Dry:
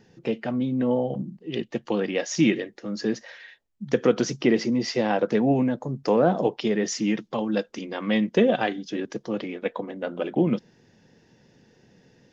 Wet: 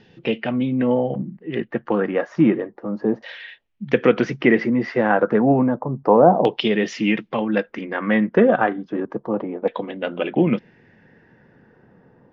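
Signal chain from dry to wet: LFO low-pass saw down 0.31 Hz 840–3400 Hz; gain +4 dB

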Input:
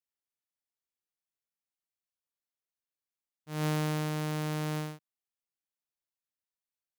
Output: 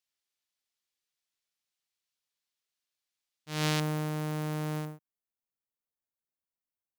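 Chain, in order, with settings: bell 4000 Hz +10 dB 2.4 oct, from 3.8 s -4.5 dB, from 4.85 s -14 dB

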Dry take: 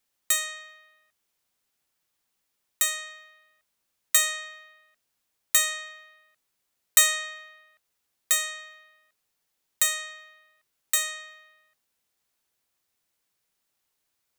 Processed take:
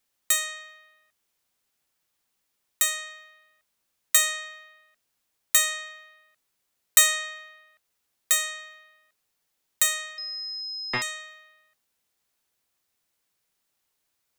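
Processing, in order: 10.18–11.02 pulse-width modulation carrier 5100 Hz; gain +1 dB

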